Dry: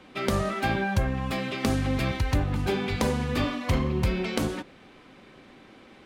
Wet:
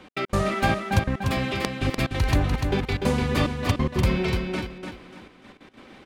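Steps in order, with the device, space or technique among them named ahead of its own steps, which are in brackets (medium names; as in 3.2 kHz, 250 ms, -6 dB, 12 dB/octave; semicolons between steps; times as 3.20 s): trance gate with a delay (trance gate "x.x.xxxxx.." 182 bpm -60 dB; feedback delay 295 ms, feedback 30%, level -5 dB); trim +3.5 dB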